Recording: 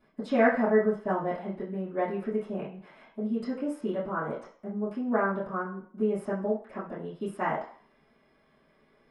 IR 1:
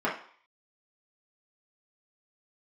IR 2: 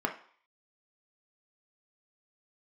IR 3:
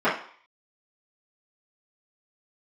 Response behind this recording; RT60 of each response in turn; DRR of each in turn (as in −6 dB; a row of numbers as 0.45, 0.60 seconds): 3; 0.50, 0.50, 0.50 seconds; −7.0, 2.0, −14.5 decibels